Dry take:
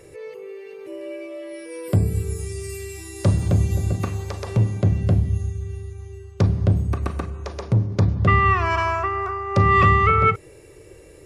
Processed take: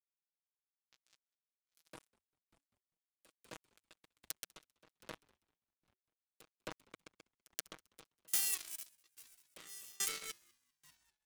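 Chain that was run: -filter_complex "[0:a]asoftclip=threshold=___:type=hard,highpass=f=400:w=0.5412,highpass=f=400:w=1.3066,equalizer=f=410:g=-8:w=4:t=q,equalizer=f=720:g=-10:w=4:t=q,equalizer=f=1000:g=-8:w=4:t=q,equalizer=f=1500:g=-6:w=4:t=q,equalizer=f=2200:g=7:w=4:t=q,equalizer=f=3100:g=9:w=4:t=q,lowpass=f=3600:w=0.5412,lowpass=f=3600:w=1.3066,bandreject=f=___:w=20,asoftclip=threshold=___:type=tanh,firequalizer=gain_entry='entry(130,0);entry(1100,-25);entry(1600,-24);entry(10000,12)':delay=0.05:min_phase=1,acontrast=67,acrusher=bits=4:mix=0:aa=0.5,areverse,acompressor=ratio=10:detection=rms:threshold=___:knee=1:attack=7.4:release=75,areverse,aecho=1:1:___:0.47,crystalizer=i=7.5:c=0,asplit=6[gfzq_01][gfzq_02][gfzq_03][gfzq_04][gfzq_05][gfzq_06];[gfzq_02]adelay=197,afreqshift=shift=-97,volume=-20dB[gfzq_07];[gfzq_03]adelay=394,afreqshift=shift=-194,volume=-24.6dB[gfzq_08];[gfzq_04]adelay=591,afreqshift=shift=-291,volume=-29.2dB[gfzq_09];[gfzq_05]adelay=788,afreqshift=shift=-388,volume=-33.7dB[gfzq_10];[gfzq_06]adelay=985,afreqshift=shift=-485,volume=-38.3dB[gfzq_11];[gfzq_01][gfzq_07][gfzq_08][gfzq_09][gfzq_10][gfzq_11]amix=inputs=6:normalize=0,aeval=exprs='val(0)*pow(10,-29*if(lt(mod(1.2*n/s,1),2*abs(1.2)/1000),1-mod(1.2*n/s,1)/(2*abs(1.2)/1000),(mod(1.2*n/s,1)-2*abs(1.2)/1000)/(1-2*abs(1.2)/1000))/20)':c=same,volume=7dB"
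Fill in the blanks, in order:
-10dB, 2200, -16dB, -50dB, 6.3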